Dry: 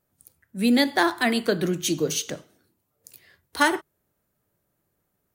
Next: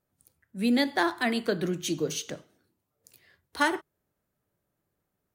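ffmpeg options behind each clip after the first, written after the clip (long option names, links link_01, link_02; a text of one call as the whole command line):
ffmpeg -i in.wav -af "highshelf=frequency=7000:gain=-6,volume=-4.5dB" out.wav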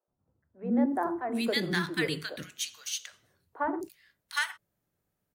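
ffmpeg -i in.wav -filter_complex "[0:a]acrossover=split=380|1200[link_01][link_02][link_03];[link_01]adelay=80[link_04];[link_03]adelay=760[link_05];[link_04][link_02][link_05]amix=inputs=3:normalize=0" out.wav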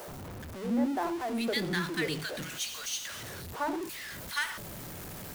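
ffmpeg -i in.wav -af "aeval=exprs='val(0)+0.5*0.0251*sgn(val(0))':channel_layout=same,volume=-4dB" out.wav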